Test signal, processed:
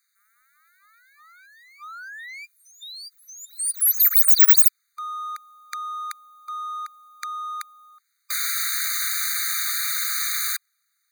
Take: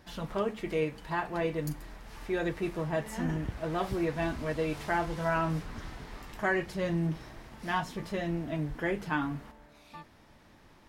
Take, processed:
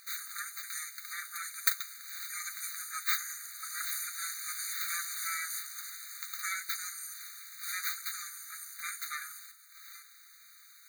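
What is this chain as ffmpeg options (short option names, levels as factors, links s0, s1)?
-af "aexciter=amount=9.1:drive=9.8:freq=5100,aeval=exprs='abs(val(0))':c=same,afftfilt=real='re*eq(mod(floor(b*sr/1024/1200),2),1)':imag='im*eq(mod(floor(b*sr/1024/1200),2),1)':win_size=1024:overlap=0.75"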